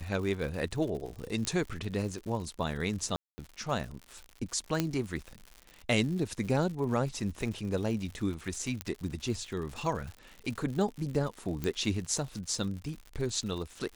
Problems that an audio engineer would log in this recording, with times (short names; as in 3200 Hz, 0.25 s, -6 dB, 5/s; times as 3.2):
crackle 120/s -38 dBFS
1.45 pop -16 dBFS
3.16–3.38 gap 0.22 s
4.8 pop -13 dBFS
8.81 pop -17 dBFS
11.64 pop -19 dBFS